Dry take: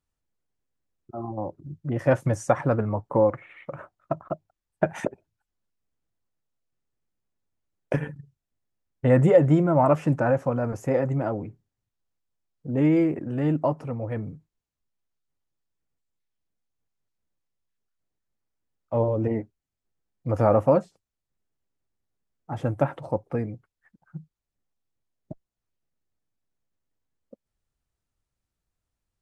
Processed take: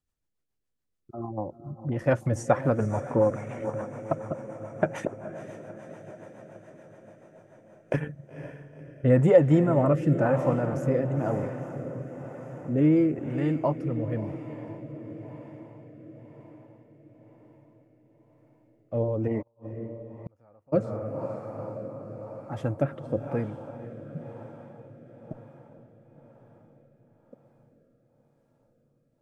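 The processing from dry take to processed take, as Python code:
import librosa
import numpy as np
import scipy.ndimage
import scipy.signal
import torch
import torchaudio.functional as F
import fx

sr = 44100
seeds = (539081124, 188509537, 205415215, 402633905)

y = fx.echo_diffused(x, sr, ms=500, feedback_pct=68, wet_db=-11.0)
y = fx.rotary_switch(y, sr, hz=7.0, then_hz=1.0, switch_at_s=7.38)
y = fx.gate_flip(y, sr, shuts_db=-25.0, range_db=-37, at=(19.41, 20.72), fade=0.02)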